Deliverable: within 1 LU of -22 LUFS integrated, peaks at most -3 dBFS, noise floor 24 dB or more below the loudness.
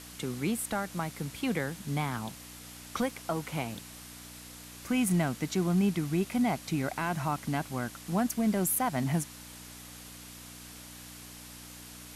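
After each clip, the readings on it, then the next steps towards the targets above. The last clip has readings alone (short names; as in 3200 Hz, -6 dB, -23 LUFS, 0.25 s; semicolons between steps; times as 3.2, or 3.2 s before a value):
hum 60 Hz; harmonics up to 300 Hz; hum level -51 dBFS; noise floor -48 dBFS; noise floor target -56 dBFS; loudness -31.5 LUFS; peak -18.5 dBFS; loudness target -22.0 LUFS
-> de-hum 60 Hz, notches 5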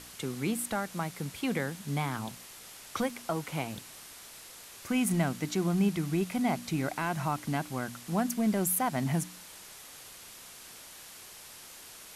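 hum none; noise floor -49 dBFS; noise floor target -56 dBFS
-> denoiser 7 dB, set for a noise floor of -49 dBFS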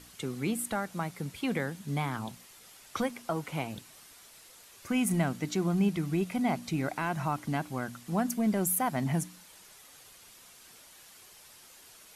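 noise floor -55 dBFS; noise floor target -56 dBFS
-> denoiser 6 dB, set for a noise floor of -55 dBFS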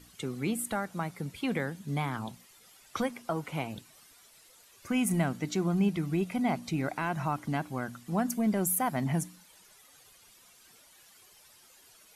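noise floor -59 dBFS; loudness -32.0 LUFS; peak -17.5 dBFS; loudness target -22.0 LUFS
-> gain +10 dB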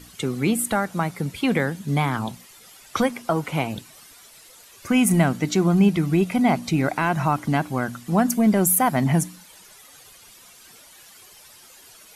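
loudness -22.0 LUFS; peak -7.5 dBFS; noise floor -49 dBFS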